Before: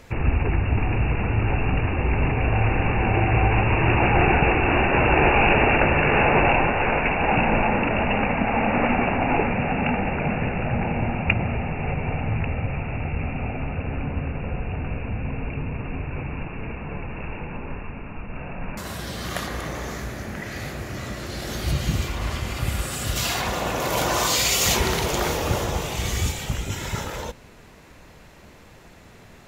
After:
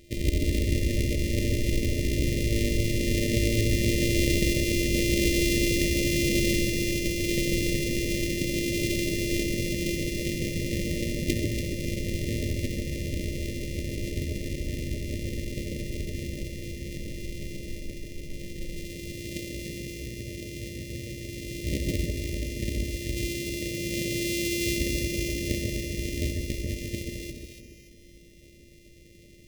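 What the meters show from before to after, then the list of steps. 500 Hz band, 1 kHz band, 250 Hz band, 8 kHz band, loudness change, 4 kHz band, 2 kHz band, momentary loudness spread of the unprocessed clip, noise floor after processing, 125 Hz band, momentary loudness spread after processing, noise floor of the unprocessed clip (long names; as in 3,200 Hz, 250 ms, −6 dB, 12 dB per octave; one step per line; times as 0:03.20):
−6.0 dB, below −40 dB, −2.0 dB, −2.5 dB, −5.5 dB, −2.5 dB, −9.0 dB, 15 LU, −51 dBFS, −5.0 dB, 13 LU, −47 dBFS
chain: samples sorted by size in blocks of 128 samples
delay that swaps between a low-pass and a high-pass 143 ms, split 1,800 Hz, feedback 63%, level −2.5 dB
brick-wall band-stop 620–1,800 Hz
level −5 dB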